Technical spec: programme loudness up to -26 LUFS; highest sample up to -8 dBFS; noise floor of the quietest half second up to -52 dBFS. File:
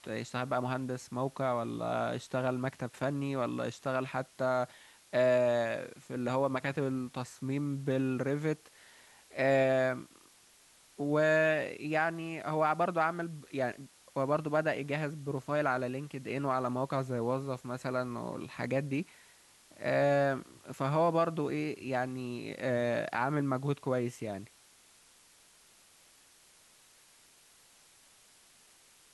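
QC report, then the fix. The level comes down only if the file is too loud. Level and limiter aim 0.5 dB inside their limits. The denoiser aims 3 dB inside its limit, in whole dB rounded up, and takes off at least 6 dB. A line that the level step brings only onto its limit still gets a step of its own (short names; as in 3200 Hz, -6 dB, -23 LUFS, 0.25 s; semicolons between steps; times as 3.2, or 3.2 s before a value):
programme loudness -33.0 LUFS: OK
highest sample -16.0 dBFS: OK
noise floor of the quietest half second -62 dBFS: OK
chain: none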